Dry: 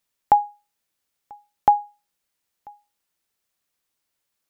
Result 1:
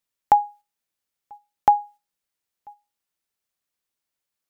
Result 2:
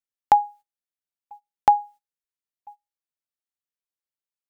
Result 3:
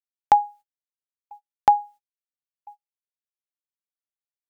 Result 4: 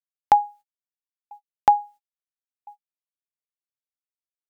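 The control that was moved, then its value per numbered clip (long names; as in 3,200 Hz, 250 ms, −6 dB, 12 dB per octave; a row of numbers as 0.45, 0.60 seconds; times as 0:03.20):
noise gate, range: −6, −20, −35, −57 decibels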